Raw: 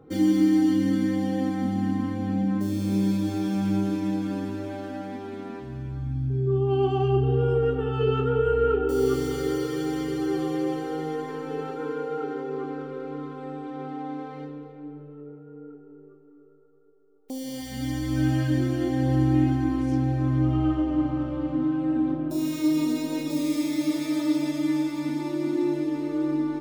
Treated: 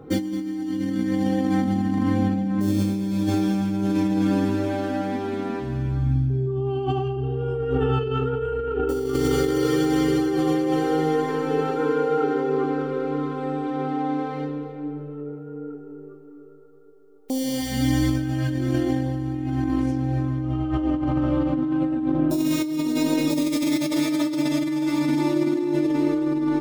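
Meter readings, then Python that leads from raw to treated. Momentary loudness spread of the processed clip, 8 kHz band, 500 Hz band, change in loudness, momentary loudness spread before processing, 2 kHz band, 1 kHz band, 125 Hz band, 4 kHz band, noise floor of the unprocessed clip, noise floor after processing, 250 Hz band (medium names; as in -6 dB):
6 LU, +5.5 dB, +2.5 dB, +2.5 dB, 13 LU, +4.5 dB, +4.5 dB, +1.5 dB, +5.0 dB, -49 dBFS, -40 dBFS, +2.5 dB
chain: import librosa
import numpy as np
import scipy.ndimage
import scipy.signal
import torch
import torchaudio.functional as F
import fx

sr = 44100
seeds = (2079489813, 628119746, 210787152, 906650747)

y = fx.over_compress(x, sr, threshold_db=-28.0, ratio=-1.0)
y = F.gain(torch.from_numpy(y), 5.5).numpy()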